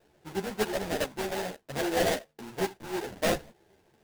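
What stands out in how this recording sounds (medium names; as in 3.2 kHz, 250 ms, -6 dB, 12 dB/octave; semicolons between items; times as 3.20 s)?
aliases and images of a low sample rate 1.2 kHz, jitter 20%; a shimmering, thickened sound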